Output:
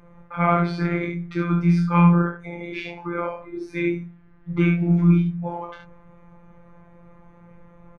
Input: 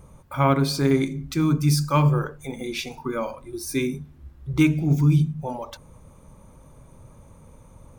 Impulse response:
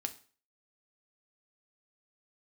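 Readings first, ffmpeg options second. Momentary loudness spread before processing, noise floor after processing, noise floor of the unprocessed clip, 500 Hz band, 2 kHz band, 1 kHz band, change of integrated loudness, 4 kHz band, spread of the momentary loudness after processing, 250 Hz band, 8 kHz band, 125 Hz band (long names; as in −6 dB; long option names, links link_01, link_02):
14 LU, −51 dBFS, −50 dBFS, −1.0 dB, +3.0 dB, +2.5 dB, +1.0 dB, below −10 dB, 17 LU, +2.5 dB, below −20 dB, +0.5 dB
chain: -filter_complex "[0:a]lowpass=frequency=1900:width_type=q:width=2.2,asplit=2[link_01][link_02];[link_02]adelay=21,volume=-3dB[link_03];[link_01][link_03]amix=inputs=2:normalize=0,aecho=1:1:40|72:0.531|0.501,afftfilt=real='hypot(re,im)*cos(PI*b)':imag='0':win_size=1024:overlap=0.75"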